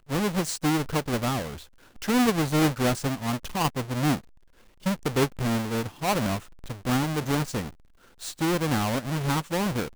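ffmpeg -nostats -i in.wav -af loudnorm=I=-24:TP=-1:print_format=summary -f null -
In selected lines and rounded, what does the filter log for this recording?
Input Integrated:    -26.9 LUFS
Input True Peak:     -13.6 dBTP
Input LRA:             2.3 LU
Input Threshold:     -37.5 LUFS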